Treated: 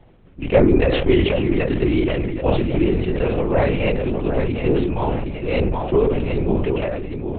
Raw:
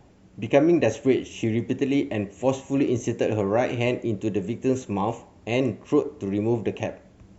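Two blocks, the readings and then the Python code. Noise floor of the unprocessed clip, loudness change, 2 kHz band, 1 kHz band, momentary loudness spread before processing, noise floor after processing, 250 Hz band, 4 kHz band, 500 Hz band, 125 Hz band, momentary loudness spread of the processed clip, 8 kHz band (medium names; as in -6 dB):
-53 dBFS, +5.0 dB, +5.5 dB, +4.0 dB, 8 LU, -40 dBFS, +3.5 dB, +7.0 dB, +5.0 dB, +8.0 dB, 6 LU, no reading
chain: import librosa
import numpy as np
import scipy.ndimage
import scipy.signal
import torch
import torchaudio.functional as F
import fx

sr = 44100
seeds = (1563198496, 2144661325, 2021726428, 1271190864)

p1 = x + fx.echo_feedback(x, sr, ms=769, feedback_pct=22, wet_db=-7.0, dry=0)
p2 = fx.lpc_vocoder(p1, sr, seeds[0], excitation='whisper', order=8)
p3 = fx.sustainer(p2, sr, db_per_s=32.0)
y = F.gain(torch.from_numpy(p3), 3.0).numpy()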